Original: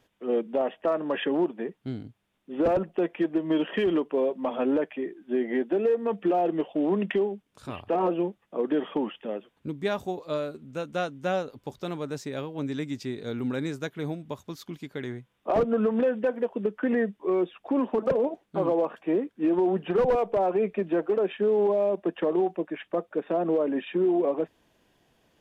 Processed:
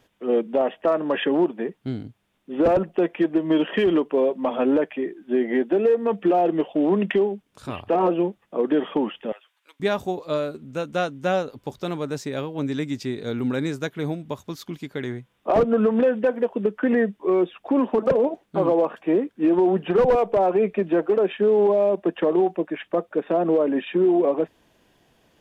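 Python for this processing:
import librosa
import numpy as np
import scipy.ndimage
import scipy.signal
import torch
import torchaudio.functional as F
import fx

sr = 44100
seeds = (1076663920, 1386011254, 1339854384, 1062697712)

y = fx.bessel_highpass(x, sr, hz=1400.0, order=4, at=(9.32, 9.8))
y = y * 10.0 ** (5.0 / 20.0)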